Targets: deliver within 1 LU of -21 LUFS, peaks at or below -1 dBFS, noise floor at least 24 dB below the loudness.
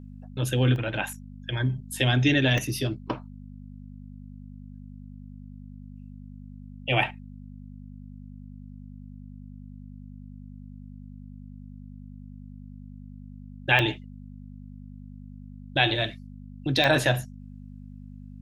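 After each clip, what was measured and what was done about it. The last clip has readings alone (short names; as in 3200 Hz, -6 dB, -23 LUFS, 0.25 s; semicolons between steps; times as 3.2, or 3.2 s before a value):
dropouts 4; longest dropout 1.2 ms; hum 50 Hz; harmonics up to 250 Hz; hum level -40 dBFS; loudness -25.5 LUFS; peak -7.0 dBFS; loudness target -21.0 LUFS
-> interpolate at 0.76/2.58/13.79/16.84, 1.2 ms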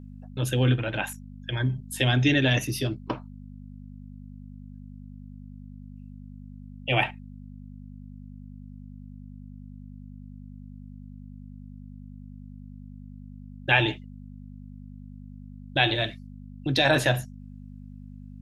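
dropouts 0; hum 50 Hz; harmonics up to 250 Hz; hum level -40 dBFS
-> de-hum 50 Hz, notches 5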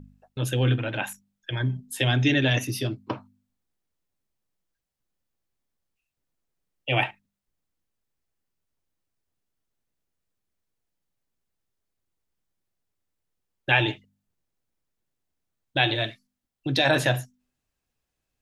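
hum none; loudness -25.0 LUFS; peak -7.0 dBFS; loudness target -21.0 LUFS
-> gain +4 dB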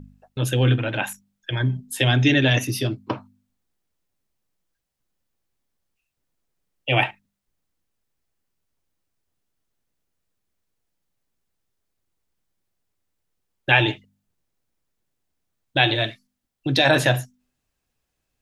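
loudness -21.0 LUFS; peak -3.0 dBFS; noise floor -79 dBFS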